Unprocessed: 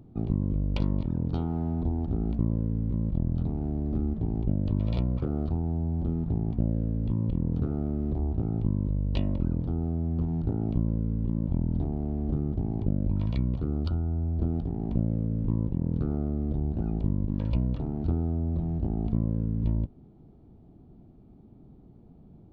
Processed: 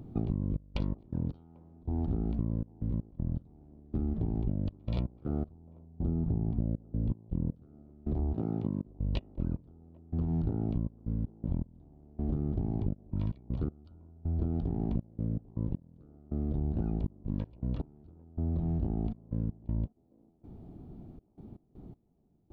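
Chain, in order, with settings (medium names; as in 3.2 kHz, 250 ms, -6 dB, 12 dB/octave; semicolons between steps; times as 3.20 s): 5.45–7.55 s: tilt shelf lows +4.5 dB, about 1.3 kHz; 8.34–8.86 s: high-pass 170 Hz 12 dB/octave; compression 6:1, threshold -32 dBFS, peak gain reduction 15.5 dB; trance gate "xxx.x.x...x" 80 bpm -24 dB; feedback echo behind a band-pass 794 ms, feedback 43%, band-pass 550 Hz, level -22 dB; trim +4.5 dB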